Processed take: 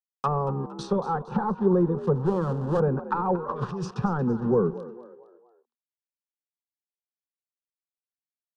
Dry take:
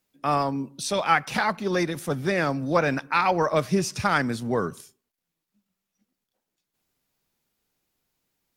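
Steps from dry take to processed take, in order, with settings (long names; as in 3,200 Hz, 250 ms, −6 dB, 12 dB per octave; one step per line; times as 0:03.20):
leveller curve on the samples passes 2
centre clipping without the shift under −29.5 dBFS
0:03.35–0:03.91: compressor whose output falls as the input rises −27 dBFS, ratio −1
treble cut that deepens with the level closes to 610 Hz, closed at −16.5 dBFS
high-shelf EQ 3,700 Hz −8.5 dB
echo with shifted repeats 230 ms, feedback 43%, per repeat +58 Hz, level −15 dB
0:02.15–0:02.80: asymmetric clip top −21.5 dBFS
low-pass filter 10,000 Hz 24 dB per octave
phaser with its sweep stopped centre 430 Hz, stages 8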